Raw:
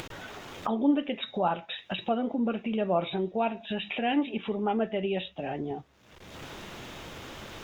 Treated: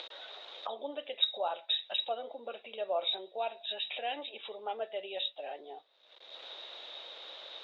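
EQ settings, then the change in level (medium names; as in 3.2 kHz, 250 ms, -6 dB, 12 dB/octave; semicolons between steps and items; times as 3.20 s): ladder high-pass 480 Hz, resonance 50%; resonant low-pass 3.8 kHz, resonance Q 12; -2.5 dB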